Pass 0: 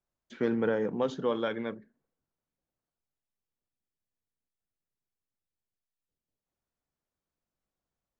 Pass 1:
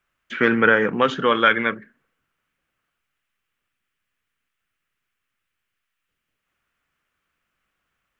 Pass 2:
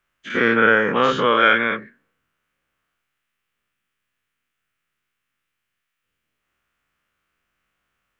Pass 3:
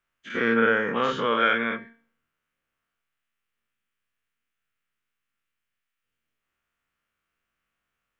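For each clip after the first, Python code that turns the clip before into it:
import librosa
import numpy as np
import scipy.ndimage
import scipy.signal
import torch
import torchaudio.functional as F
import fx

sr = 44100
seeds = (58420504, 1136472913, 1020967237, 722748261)

y1 = fx.band_shelf(x, sr, hz=1900.0, db=14.0, octaves=1.7)
y1 = y1 * librosa.db_to_amplitude(8.5)
y2 = fx.spec_dilate(y1, sr, span_ms=120)
y2 = y2 * librosa.db_to_amplitude(-3.5)
y3 = fx.comb_fb(y2, sr, f0_hz=230.0, decay_s=0.48, harmonics='all', damping=0.0, mix_pct=60)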